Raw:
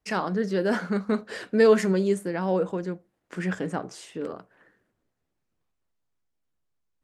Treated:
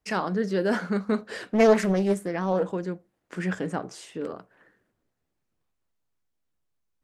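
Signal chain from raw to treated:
0:01.49–0:02.69: highs frequency-modulated by the lows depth 0.48 ms

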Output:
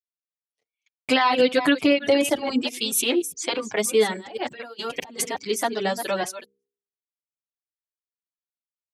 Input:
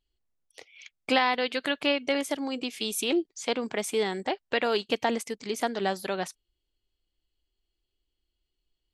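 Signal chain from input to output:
delay that plays each chunk backwards 208 ms, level −9.5 dB
0:01.39–0:02.62: low-shelf EQ 340 Hz +11.5 dB
0:04.26–0:05.24: compressor whose output falls as the input rises −38 dBFS, ratio −1
noise gate −41 dBFS, range −43 dB
high-pass filter 51 Hz
high-shelf EQ 9,700 Hz +7.5 dB
hum removal 67.2 Hz, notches 7
reverb reduction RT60 0.78 s
boost into a limiter +14 dB
barber-pole flanger 7.1 ms +0.53 Hz
level −5 dB

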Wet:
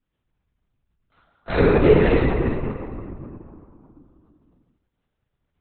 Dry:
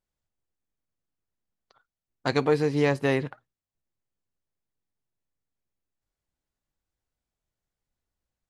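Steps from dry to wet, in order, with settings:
notch filter 990 Hz, Q 8.8
time stretch by phase vocoder 0.66×
convolution reverb RT60 2.9 s, pre-delay 3 ms, DRR −12.5 dB
linear-prediction vocoder at 8 kHz whisper

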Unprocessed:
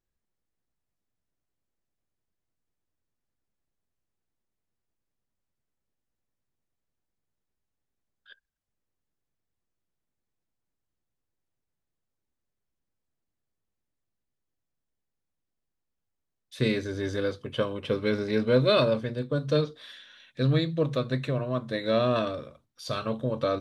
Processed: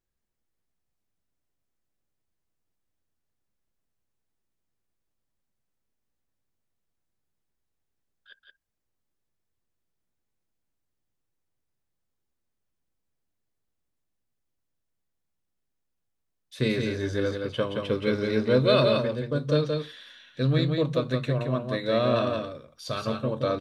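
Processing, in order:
on a send: single-tap delay 173 ms −4.5 dB

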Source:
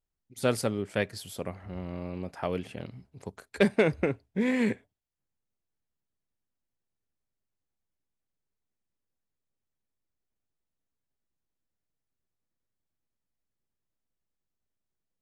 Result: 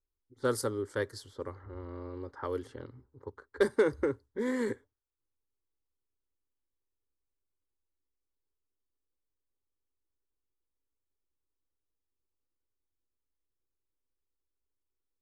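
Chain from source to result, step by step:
phaser with its sweep stopped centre 680 Hz, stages 6
low-pass that shuts in the quiet parts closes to 990 Hz, open at −31.5 dBFS

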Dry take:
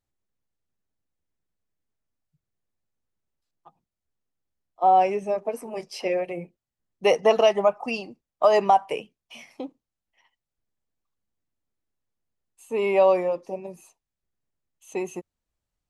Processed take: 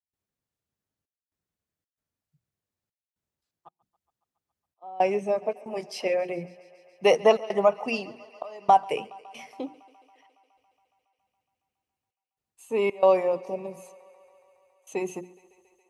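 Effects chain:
high-pass filter 78 Hz
low-shelf EQ 100 Hz +6 dB
mains-hum notches 60/120/180/240/300/360 Hz
gate pattern ".xxxxxxx..xxxx" 114 BPM −24 dB
feedback echo with a high-pass in the loop 139 ms, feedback 80%, high-pass 230 Hz, level −22.5 dB

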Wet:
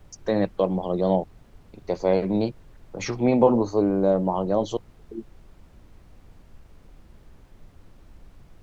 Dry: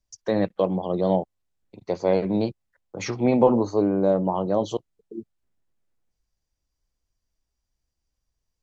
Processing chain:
background noise brown −47 dBFS

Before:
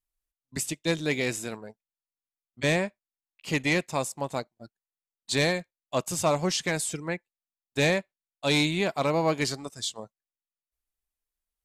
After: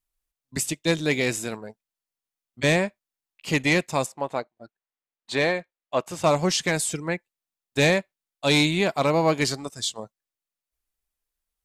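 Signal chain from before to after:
0:04.06–0:06.24: bass and treble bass −9 dB, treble −14 dB
level +4 dB

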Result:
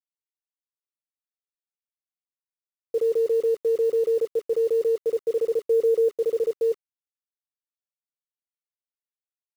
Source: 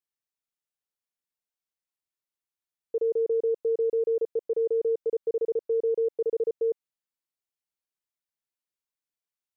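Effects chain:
notch filter 410 Hz, Q 12
0:05.60–0:06.16: parametric band 460 Hz +3 dB 1.8 octaves
in parallel at +2.5 dB: brickwall limiter −28.5 dBFS, peak gain reduction 10 dB
on the sum: bit reduction 8 bits

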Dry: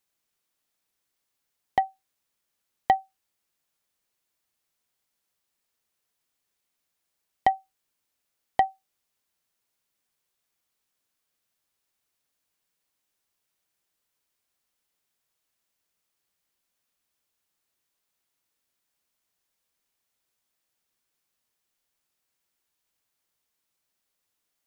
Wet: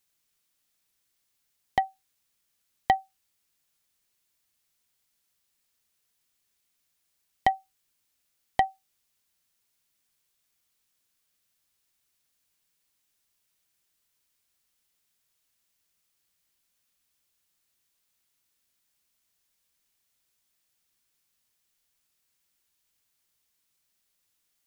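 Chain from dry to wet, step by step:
parametric band 620 Hz −7 dB 3 octaves
level +5 dB

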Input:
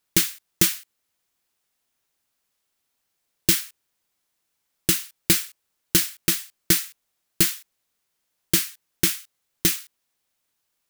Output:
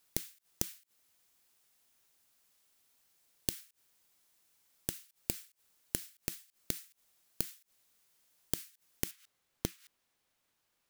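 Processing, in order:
high-shelf EQ 4,400 Hz +4.5 dB, from 0:09.11 −7 dB
brickwall limiter −9 dBFS, peak gain reduction 9.5 dB
gate with flip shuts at −24 dBFS, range −26 dB
level +1 dB

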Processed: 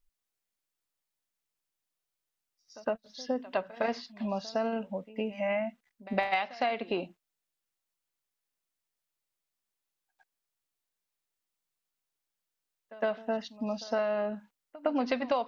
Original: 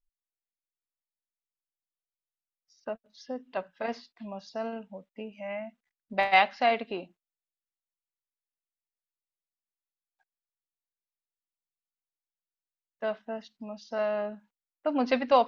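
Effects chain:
downward compressor 12 to 1, threshold −33 dBFS, peak gain reduction 18.5 dB
on a send: backwards echo 110 ms −19 dB
on the sum: level +7.5 dB

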